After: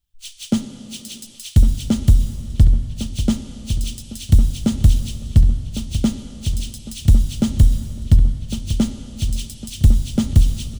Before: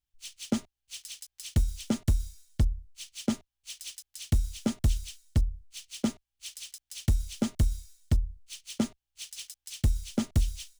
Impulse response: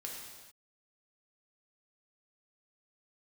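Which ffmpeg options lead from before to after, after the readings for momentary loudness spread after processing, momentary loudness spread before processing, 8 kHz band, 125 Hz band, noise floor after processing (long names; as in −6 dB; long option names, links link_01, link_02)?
13 LU, 14 LU, +7.5 dB, +14.0 dB, −41 dBFS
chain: -filter_complex "[0:a]equalizer=frequency=14000:width_type=o:width=1.6:gain=-5,aexciter=amount=3:drive=3.8:freq=3000,bass=frequency=250:gain=9,treble=frequency=4000:gain=-5,asplit=2[link_01][link_02];[link_02]adelay=1105,lowpass=frequency=2000:poles=1,volume=-10dB,asplit=2[link_03][link_04];[link_04]adelay=1105,lowpass=frequency=2000:poles=1,volume=0.46,asplit=2[link_05][link_06];[link_06]adelay=1105,lowpass=frequency=2000:poles=1,volume=0.46,asplit=2[link_07][link_08];[link_08]adelay=1105,lowpass=frequency=2000:poles=1,volume=0.46,asplit=2[link_09][link_10];[link_10]adelay=1105,lowpass=frequency=2000:poles=1,volume=0.46[link_11];[link_01][link_03][link_05][link_07][link_09][link_11]amix=inputs=6:normalize=0,asplit=2[link_12][link_13];[1:a]atrim=start_sample=2205,asetrate=23814,aresample=44100[link_14];[link_13][link_14]afir=irnorm=-1:irlink=0,volume=-9.5dB[link_15];[link_12][link_15]amix=inputs=2:normalize=0,volume=2.5dB"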